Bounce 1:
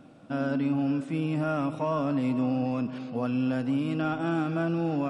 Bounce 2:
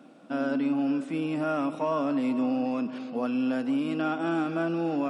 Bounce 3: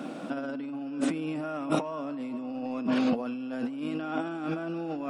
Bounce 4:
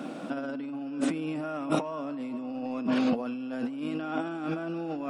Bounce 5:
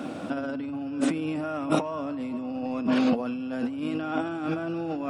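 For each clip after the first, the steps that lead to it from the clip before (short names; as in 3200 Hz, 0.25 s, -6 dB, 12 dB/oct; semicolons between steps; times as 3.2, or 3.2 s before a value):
HPF 200 Hz 24 dB/oct; gain +1 dB
negative-ratio compressor -38 dBFS, ratio -1; gain +5.5 dB
nothing audible
band noise 86–190 Hz -56 dBFS; gain +3 dB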